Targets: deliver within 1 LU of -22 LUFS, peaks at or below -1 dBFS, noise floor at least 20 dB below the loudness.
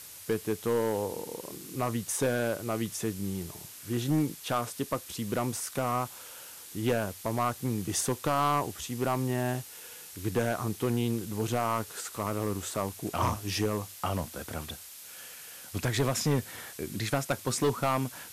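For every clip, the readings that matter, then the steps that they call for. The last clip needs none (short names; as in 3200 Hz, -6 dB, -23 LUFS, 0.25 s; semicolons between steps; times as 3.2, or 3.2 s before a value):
clipped 0.9%; flat tops at -20.5 dBFS; noise floor -47 dBFS; noise floor target -52 dBFS; loudness -31.5 LUFS; peak -20.5 dBFS; loudness target -22.0 LUFS
-> clip repair -20.5 dBFS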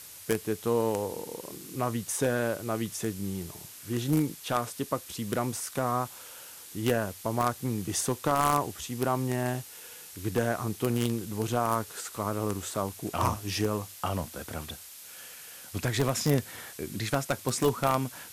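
clipped 0.0%; noise floor -47 dBFS; noise floor target -51 dBFS
-> denoiser 6 dB, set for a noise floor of -47 dBFS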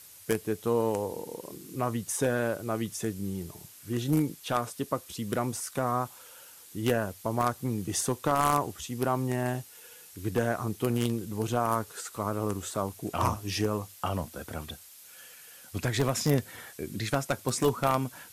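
noise floor -51 dBFS; loudness -30.5 LUFS; peak -11.5 dBFS; loudness target -22.0 LUFS
-> gain +8.5 dB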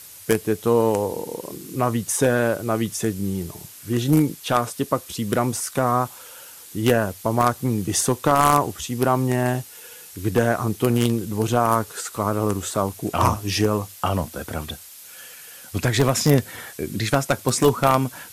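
loudness -22.0 LUFS; peak -3.0 dBFS; noise floor -43 dBFS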